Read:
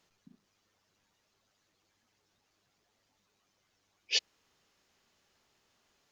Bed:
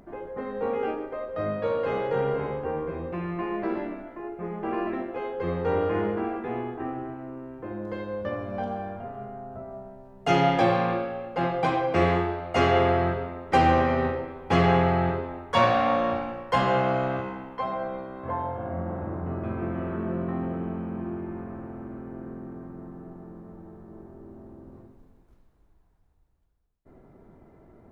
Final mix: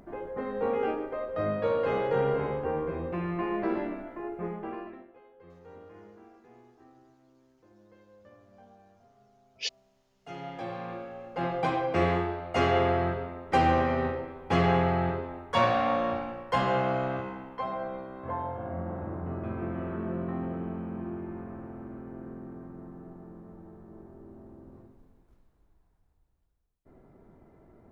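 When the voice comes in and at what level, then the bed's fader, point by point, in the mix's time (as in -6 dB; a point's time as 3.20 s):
5.50 s, -4.0 dB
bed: 4.46 s -0.5 dB
5.23 s -24.5 dB
10.05 s -24.5 dB
11.52 s -3.5 dB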